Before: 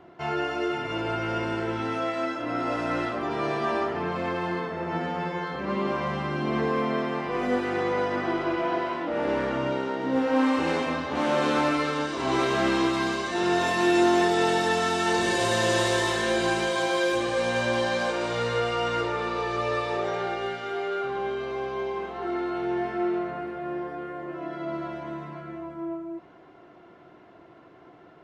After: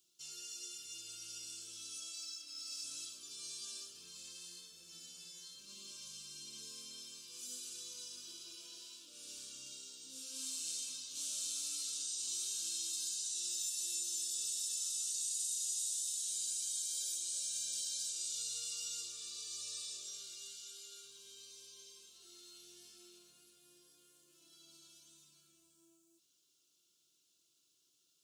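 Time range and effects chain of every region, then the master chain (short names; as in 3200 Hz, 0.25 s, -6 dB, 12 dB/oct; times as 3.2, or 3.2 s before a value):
2.14–2.84 careless resampling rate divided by 2×, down filtered, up zero stuff + speaker cabinet 280–9700 Hz, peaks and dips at 430 Hz -10 dB, 1000 Hz -3 dB, 2100 Hz +4 dB, 3200 Hz -3 dB, 5000 Hz +5 dB, 7200 Hz -3 dB
whole clip: inverse Chebyshev high-pass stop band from 2100 Hz, stop band 40 dB; resonant high shelf 5800 Hz +9.5 dB, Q 1.5; compressor 6:1, threshold -40 dBFS; gain +3.5 dB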